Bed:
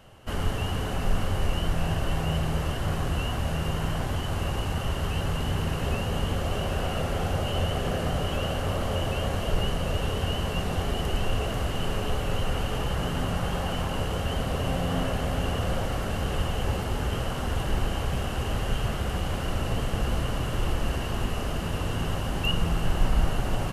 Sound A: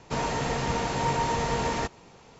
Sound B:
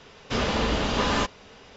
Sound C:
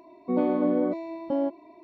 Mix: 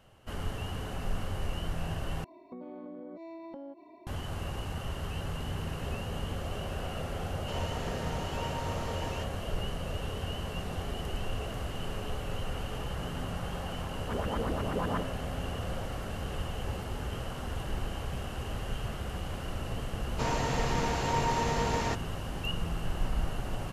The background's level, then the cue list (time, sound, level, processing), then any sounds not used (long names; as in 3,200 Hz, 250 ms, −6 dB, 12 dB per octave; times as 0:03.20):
bed −8 dB
0:02.24: overwrite with C −3 dB + downward compressor 16 to 1, threshold −37 dBFS
0:07.37: mix in A −12.5 dB
0:13.77: mix in B −11.5 dB + auto-filter low-pass saw up 8.3 Hz 310–1,700 Hz
0:20.08: mix in A −3 dB